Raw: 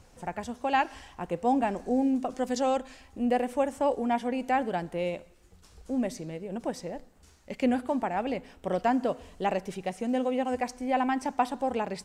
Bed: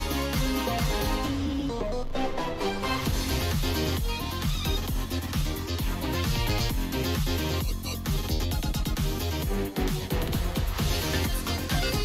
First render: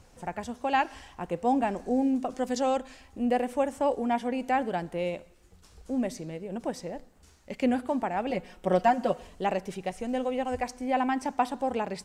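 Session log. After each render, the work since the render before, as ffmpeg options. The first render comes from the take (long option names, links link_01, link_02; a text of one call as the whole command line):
ffmpeg -i in.wav -filter_complex "[0:a]asettb=1/sr,asplit=3[link_01][link_02][link_03];[link_01]atrim=end=8.304[link_04];[link_02]atrim=start=8.3:end=9.27,asetpts=PTS-STARTPTS,afade=type=in:duration=0.004:curve=qsin,afade=type=out:start_time=0.966:duration=0.004:curve=qsin,aecho=1:1:5.5:0.86,atrim=end_sample=42777[link_05];[link_03]atrim=start=9.266[link_06];[link_04][link_05]acrossfade=duration=0.004:curve1=hsin:curve2=qsin[link_07];[link_07][link_06]acrossfade=duration=0.004:curve1=qsin:curve2=hsin,asplit=3[link_08][link_09][link_10];[link_08]afade=type=out:start_time=9.89:duration=0.02[link_11];[link_09]asubboost=boost=6:cutoff=72,afade=type=in:start_time=9.89:duration=0.02,afade=type=out:start_time=10.66:duration=0.02[link_12];[link_10]afade=type=in:start_time=10.66:duration=0.02[link_13];[link_11][link_12][link_13]amix=inputs=3:normalize=0" out.wav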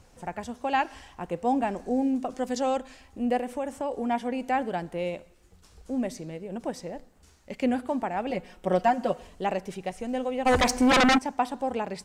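ffmpeg -i in.wav -filter_complex "[0:a]asettb=1/sr,asplit=3[link_01][link_02][link_03];[link_01]atrim=end=3.374[link_04];[link_02]atrim=start=3.37:end=3.96,asetpts=PTS-STARTPTS,afade=type=in:duration=0.004:curve=qsin,afade=type=out:start_time=0.586:duration=0.004:curve=qsin,acompressor=threshold=-27dB:ratio=3:attack=3.2:release=140:knee=1:detection=peak[link_05];[link_03]atrim=start=3.956[link_06];[link_04][link_05]acrossfade=duration=0.004:curve1=hsin:curve2=qsin[link_07];[link_07][link_06]acrossfade=duration=0.004:curve1=qsin:curve2=hsin,asplit=3[link_08][link_09][link_10];[link_08]afade=type=out:start_time=10.45:duration=0.02[link_11];[link_09]aeval=exprs='0.158*sin(PI/2*3.98*val(0)/0.158)':channel_layout=same,afade=type=in:start_time=10.45:duration=0.02,afade=type=out:start_time=11.17:duration=0.02[link_12];[link_10]afade=type=in:start_time=11.17:duration=0.02[link_13];[link_11][link_12][link_13]amix=inputs=3:normalize=0" out.wav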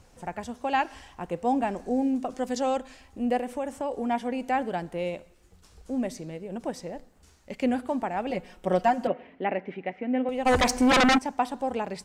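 ffmpeg -i in.wav -filter_complex "[0:a]asettb=1/sr,asplit=3[link_01][link_02][link_03];[link_01]atrim=end=9.074[link_04];[link_02]atrim=start=9.07:end=10.29,asetpts=PTS-STARTPTS,afade=type=in:duration=0.004:curve=qsin,afade=type=out:start_time=1.216:duration=0.004:curve=qsin,highpass=190,equalizer=frequency=270:width_type=q:width=4:gain=9,equalizer=frequency=1100:width_type=q:width=4:gain=-6,equalizer=frequency=2100:width_type=q:width=4:gain=8,lowpass=frequency=2700:width=0.5412,lowpass=frequency=2700:width=1.3066[link_05];[link_03]atrim=start=10.286[link_06];[link_04][link_05]acrossfade=duration=0.004:curve1=hsin:curve2=qsin[link_07];[link_07][link_06]acrossfade=duration=0.004:curve1=qsin:curve2=hsin" out.wav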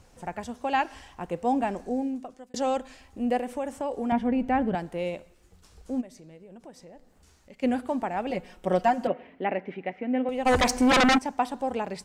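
ffmpeg -i in.wav -filter_complex "[0:a]asettb=1/sr,asplit=3[link_01][link_02][link_03];[link_01]atrim=end=4.124[link_04];[link_02]atrim=start=4.12:end=4.75,asetpts=PTS-STARTPTS,afade=type=in:duration=0.004:curve=qsin,afade=type=out:start_time=0.626:duration=0.004:curve=qsin,bass=frequency=250:gain=14,treble=frequency=4000:gain=-14[link_05];[link_03]atrim=start=4.746[link_06];[link_04][link_05]acrossfade=duration=0.004:curve1=hsin:curve2=qsin[link_07];[link_07][link_06]acrossfade=duration=0.004:curve1=qsin:curve2=hsin,asplit=3[link_08][link_09][link_10];[link_08]afade=type=out:start_time=6:duration=0.02[link_11];[link_09]acompressor=threshold=-54dB:ratio=2:attack=3.2:release=140:knee=1:detection=peak,afade=type=in:start_time=6:duration=0.02,afade=type=out:start_time=7.62:duration=0.02[link_12];[link_10]afade=type=in:start_time=7.62:duration=0.02[link_13];[link_11][link_12][link_13]amix=inputs=3:normalize=0,asplit=2[link_14][link_15];[link_14]atrim=end=2.54,asetpts=PTS-STARTPTS,afade=type=out:start_time=1.76:duration=0.78[link_16];[link_15]atrim=start=2.54,asetpts=PTS-STARTPTS,afade=type=in:duration=0.004:curve=hsin[link_17];[link_16][link_17]concat=n=2:v=0:a=1" out.wav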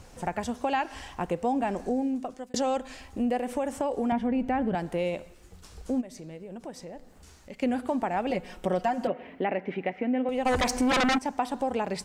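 ffmpeg -i in.wav -filter_complex "[0:a]asplit=2[link_01][link_02];[link_02]alimiter=limit=-19.5dB:level=0:latency=1:release=31,volume=1dB[link_03];[link_01][link_03]amix=inputs=2:normalize=0,acompressor=threshold=-27dB:ratio=2.5" out.wav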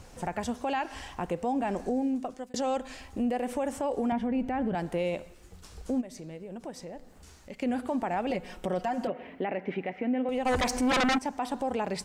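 ffmpeg -i in.wav -af "alimiter=limit=-21.5dB:level=0:latency=1:release=51" out.wav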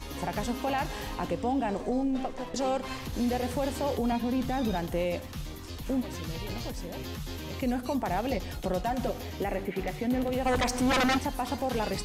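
ffmpeg -i in.wav -i bed.wav -filter_complex "[1:a]volume=-10.5dB[link_01];[0:a][link_01]amix=inputs=2:normalize=0" out.wav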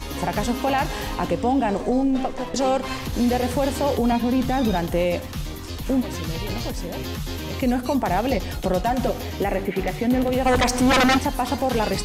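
ffmpeg -i in.wav -af "volume=8dB" out.wav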